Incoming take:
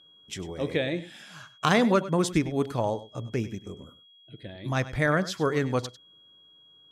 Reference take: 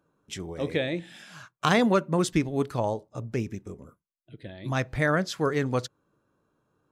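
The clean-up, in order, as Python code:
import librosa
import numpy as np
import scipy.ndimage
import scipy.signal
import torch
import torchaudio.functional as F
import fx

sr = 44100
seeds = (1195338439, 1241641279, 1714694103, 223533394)

y = fx.notch(x, sr, hz=3300.0, q=30.0)
y = fx.fix_echo_inverse(y, sr, delay_ms=99, level_db=-15.5)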